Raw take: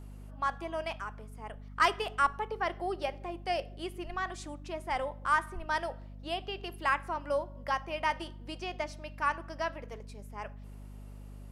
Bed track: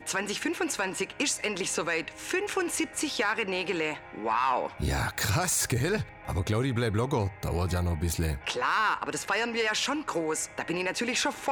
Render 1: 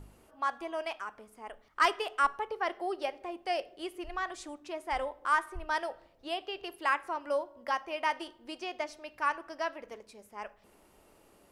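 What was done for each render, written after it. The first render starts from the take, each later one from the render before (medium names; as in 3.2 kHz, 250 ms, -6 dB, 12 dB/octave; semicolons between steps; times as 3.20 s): de-hum 50 Hz, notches 5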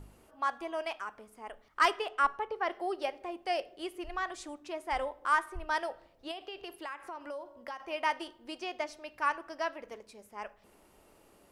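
1.99–2.71 s: treble shelf 5.6 kHz -9 dB; 6.31–7.80 s: compression 5:1, threshold -38 dBFS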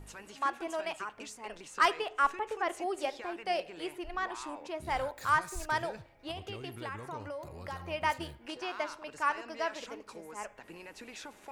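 add bed track -18.5 dB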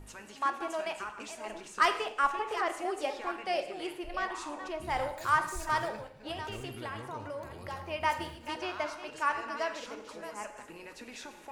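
chunks repeated in reverse 553 ms, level -11 dB; gated-style reverb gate 260 ms falling, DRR 8 dB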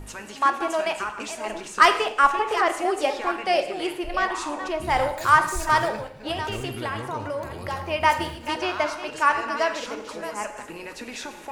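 trim +10 dB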